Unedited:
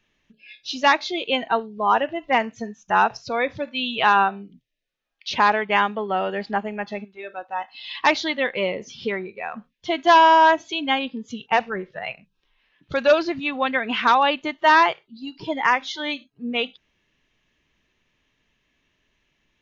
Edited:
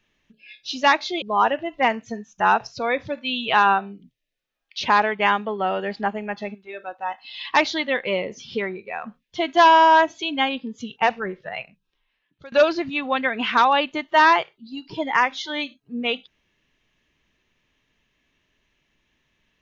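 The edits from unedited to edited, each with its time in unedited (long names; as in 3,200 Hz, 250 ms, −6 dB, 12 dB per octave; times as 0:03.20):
0:01.22–0:01.72: remove
0:11.96–0:13.02: fade out, to −22 dB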